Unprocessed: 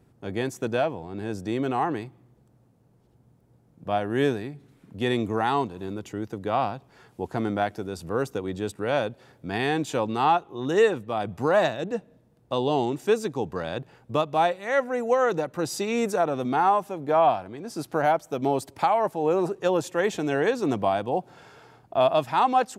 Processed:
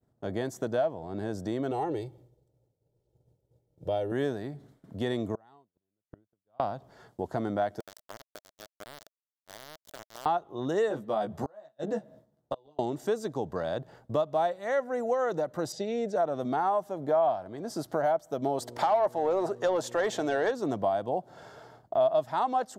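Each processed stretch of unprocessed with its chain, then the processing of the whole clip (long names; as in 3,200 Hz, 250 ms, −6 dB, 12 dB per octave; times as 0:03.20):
0:01.71–0:04.12: flat-topped bell 1,300 Hz −11 dB 1.3 octaves + comb filter 2.2 ms, depth 76%
0:05.35–0:06.60: low-shelf EQ 250 Hz +5 dB + gate with flip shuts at −27 dBFS, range −35 dB
0:07.80–0:10.26: high-pass filter 490 Hz + downward compressor 12 to 1, threshold −40 dBFS + bit-depth reduction 6 bits, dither none
0:10.89–0:12.79: high-pass filter 92 Hz + gate with flip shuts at −17 dBFS, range −38 dB + double-tracking delay 14 ms −2.5 dB
0:15.72–0:16.16: low-pass filter 3,900 Hz + phaser with its sweep stopped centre 300 Hz, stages 6
0:18.57–0:20.50: hum with harmonics 120 Hz, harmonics 4, −45 dBFS + mid-hump overdrive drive 14 dB, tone 6,100 Hz, clips at −10 dBFS
whole clip: downward expander −50 dBFS; thirty-one-band graphic EQ 630 Hz +9 dB, 2,500 Hz −12 dB, 10,000 Hz −4 dB; downward compressor 2 to 1, threshold −31 dBFS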